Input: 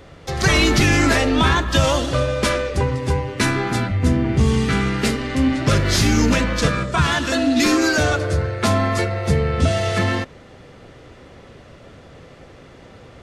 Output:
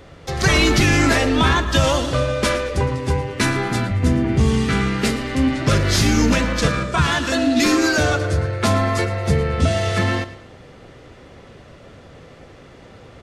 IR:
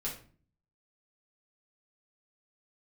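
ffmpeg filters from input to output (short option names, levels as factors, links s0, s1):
-af "aecho=1:1:112|224|336:0.168|0.0655|0.0255"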